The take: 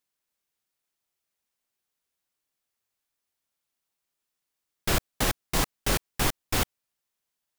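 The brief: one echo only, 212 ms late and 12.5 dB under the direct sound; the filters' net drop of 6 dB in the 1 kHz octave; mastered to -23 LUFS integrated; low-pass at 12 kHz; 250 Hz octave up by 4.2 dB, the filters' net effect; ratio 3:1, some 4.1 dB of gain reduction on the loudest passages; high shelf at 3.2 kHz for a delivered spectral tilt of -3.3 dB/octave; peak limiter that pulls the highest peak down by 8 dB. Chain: low-pass 12 kHz; peaking EQ 250 Hz +6 dB; peaking EQ 1 kHz -9 dB; treble shelf 3.2 kHz +4 dB; compression 3:1, threshold -24 dBFS; peak limiter -21 dBFS; delay 212 ms -12.5 dB; trim +12 dB

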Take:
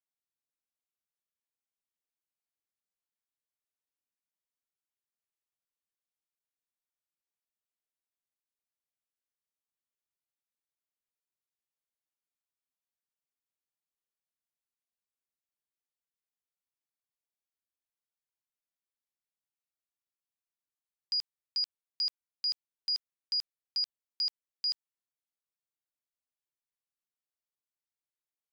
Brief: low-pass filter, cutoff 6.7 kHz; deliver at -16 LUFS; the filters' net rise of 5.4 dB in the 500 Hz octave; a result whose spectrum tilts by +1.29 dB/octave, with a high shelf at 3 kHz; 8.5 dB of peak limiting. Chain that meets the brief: low-pass 6.7 kHz; peaking EQ 500 Hz +7 dB; treble shelf 3 kHz -4 dB; trim +28.5 dB; peak limiter -9 dBFS

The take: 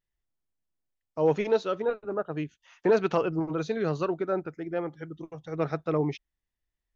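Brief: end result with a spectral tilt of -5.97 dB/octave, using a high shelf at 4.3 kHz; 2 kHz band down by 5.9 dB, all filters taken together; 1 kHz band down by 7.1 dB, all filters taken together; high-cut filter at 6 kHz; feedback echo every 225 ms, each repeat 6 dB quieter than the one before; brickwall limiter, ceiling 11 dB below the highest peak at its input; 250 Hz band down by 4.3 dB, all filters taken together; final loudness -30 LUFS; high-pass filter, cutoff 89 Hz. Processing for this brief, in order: high-pass 89 Hz; low-pass 6 kHz; peaking EQ 250 Hz -6 dB; peaking EQ 1 kHz -8 dB; peaking EQ 2 kHz -4 dB; treble shelf 4.3 kHz -4 dB; peak limiter -27.5 dBFS; feedback delay 225 ms, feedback 50%, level -6 dB; trim +7 dB

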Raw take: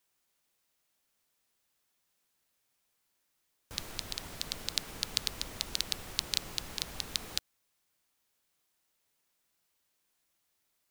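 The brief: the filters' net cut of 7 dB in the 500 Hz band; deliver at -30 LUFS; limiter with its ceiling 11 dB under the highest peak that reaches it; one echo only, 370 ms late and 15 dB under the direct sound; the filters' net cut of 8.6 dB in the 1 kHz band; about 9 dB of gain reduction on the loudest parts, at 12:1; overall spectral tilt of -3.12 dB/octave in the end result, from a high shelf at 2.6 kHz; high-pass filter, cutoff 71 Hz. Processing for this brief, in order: high-pass 71 Hz; peaking EQ 500 Hz -6.5 dB; peaking EQ 1 kHz -8.5 dB; treble shelf 2.6 kHz -6 dB; compression 12:1, threshold -40 dBFS; peak limiter -28 dBFS; delay 370 ms -15 dB; trim +22 dB

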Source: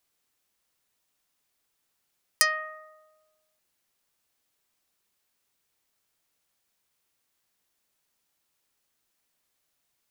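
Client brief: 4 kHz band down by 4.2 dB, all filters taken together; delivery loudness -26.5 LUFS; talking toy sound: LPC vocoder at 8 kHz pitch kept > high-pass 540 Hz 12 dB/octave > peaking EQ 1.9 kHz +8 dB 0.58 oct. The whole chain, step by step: peaking EQ 4 kHz -6.5 dB; LPC vocoder at 8 kHz pitch kept; high-pass 540 Hz 12 dB/octave; peaking EQ 1.9 kHz +8 dB 0.58 oct; trim -1.5 dB

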